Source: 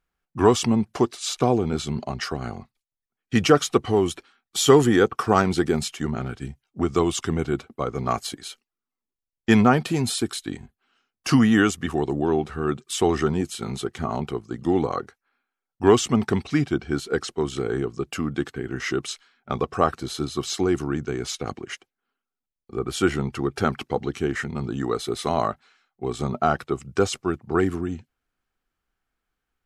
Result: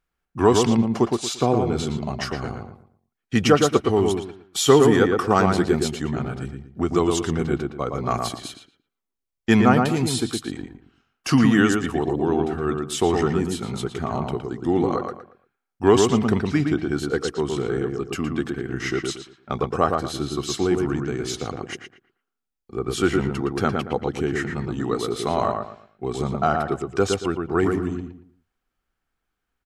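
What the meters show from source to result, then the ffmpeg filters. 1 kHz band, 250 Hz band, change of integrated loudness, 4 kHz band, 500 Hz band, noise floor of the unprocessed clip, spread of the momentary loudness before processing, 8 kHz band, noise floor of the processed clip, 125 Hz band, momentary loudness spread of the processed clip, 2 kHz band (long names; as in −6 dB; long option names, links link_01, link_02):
+1.5 dB, +1.5 dB, +1.5 dB, +0.5 dB, +1.5 dB, below −85 dBFS, 14 LU, 0.0 dB, −82 dBFS, +1.5 dB, 14 LU, +1.0 dB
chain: -filter_complex "[0:a]asplit=2[link_01][link_02];[link_02]adelay=115,lowpass=frequency=2000:poles=1,volume=-3.5dB,asplit=2[link_03][link_04];[link_04]adelay=115,lowpass=frequency=2000:poles=1,volume=0.3,asplit=2[link_05][link_06];[link_06]adelay=115,lowpass=frequency=2000:poles=1,volume=0.3,asplit=2[link_07][link_08];[link_08]adelay=115,lowpass=frequency=2000:poles=1,volume=0.3[link_09];[link_01][link_03][link_05][link_07][link_09]amix=inputs=5:normalize=0"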